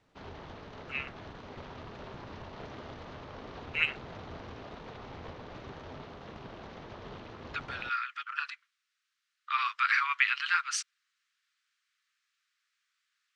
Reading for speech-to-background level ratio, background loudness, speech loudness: 15.0 dB, -46.0 LUFS, -31.0 LUFS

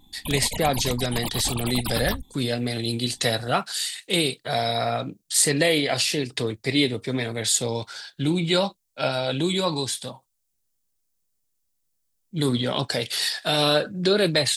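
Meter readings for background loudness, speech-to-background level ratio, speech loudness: -31.5 LUFS, 7.5 dB, -24.0 LUFS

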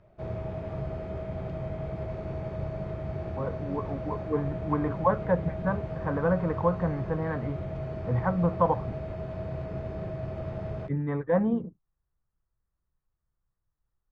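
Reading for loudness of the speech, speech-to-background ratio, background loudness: -29.5 LUFS, 6.5 dB, -36.0 LUFS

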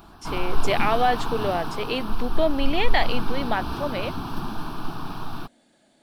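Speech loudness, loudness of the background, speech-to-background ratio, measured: -26.5 LUFS, -32.5 LUFS, 6.0 dB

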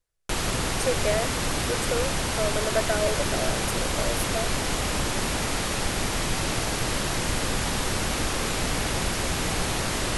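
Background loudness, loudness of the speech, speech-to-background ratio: -26.5 LUFS, -31.0 LUFS, -4.5 dB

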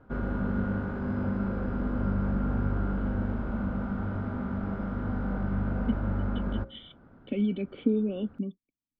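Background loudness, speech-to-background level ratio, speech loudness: -31.5 LUFS, -1.0 dB, -32.5 LUFS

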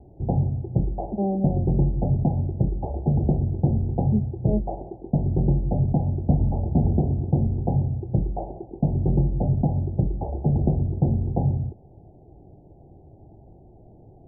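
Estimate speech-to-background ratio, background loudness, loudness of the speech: -4.5 dB, -24.5 LUFS, -29.0 LUFS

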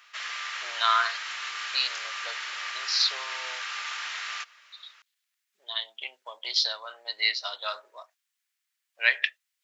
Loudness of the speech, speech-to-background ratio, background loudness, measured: -27.5 LUFS, 6.0 dB, -33.5 LUFS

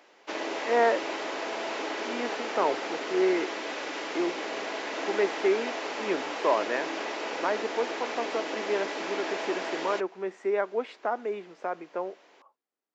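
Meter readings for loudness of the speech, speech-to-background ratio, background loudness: -31.0 LUFS, 2.5 dB, -33.5 LUFS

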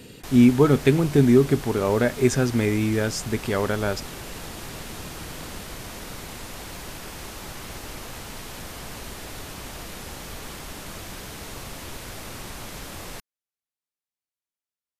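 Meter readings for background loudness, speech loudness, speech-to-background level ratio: -37.0 LUFS, -21.0 LUFS, 16.0 dB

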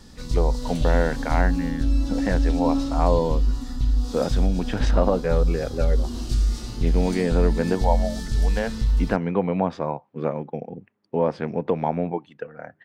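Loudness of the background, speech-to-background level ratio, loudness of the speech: -25.5 LUFS, -1.0 dB, -26.5 LUFS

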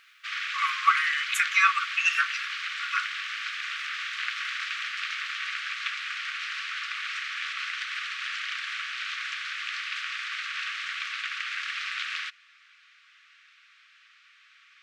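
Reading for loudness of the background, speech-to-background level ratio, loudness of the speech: -31.5 LUFS, 6.5 dB, -25.0 LUFS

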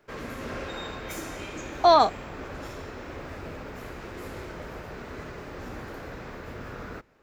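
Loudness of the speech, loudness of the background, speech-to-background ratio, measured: -20.5 LUFS, -38.5 LUFS, 18.0 dB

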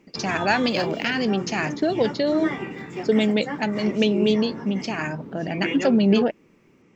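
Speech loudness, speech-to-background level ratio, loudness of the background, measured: -23.0 LUFS, 9.0 dB, -32.0 LUFS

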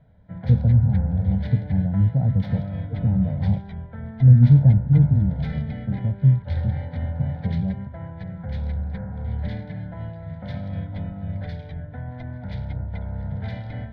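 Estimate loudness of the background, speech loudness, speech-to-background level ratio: -31.5 LUFS, -20.5 LUFS, 11.0 dB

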